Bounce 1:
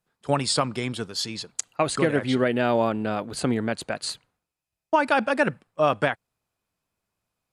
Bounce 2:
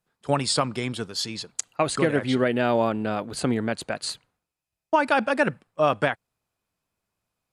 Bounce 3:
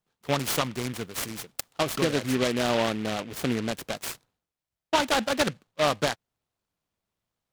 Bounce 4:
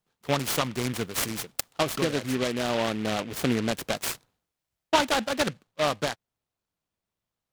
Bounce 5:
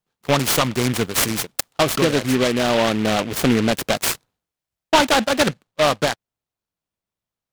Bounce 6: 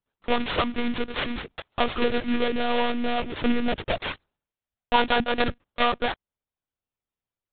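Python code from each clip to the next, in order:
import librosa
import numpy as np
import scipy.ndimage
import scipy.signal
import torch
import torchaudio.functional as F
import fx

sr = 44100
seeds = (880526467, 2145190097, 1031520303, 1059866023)

y1 = x
y2 = fx.noise_mod_delay(y1, sr, seeds[0], noise_hz=2100.0, depth_ms=0.11)
y2 = y2 * 10.0 ** (-3.0 / 20.0)
y3 = fx.rider(y2, sr, range_db=4, speed_s=0.5)
y4 = fx.leveller(y3, sr, passes=2)
y4 = y4 * 10.0 ** (2.0 / 20.0)
y5 = fx.lpc_monotone(y4, sr, seeds[1], pitch_hz=240.0, order=16)
y5 = y5 * 10.0 ** (-5.0 / 20.0)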